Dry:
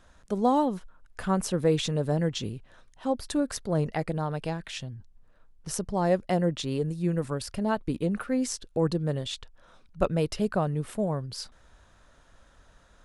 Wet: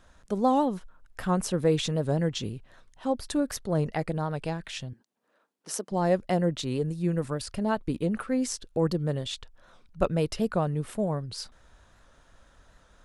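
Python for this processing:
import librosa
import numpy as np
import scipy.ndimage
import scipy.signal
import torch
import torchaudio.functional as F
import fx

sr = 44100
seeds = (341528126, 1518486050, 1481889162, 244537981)

y = fx.highpass(x, sr, hz=250.0, slope=24, at=(4.93, 5.92))
y = fx.record_warp(y, sr, rpm=78.0, depth_cents=100.0)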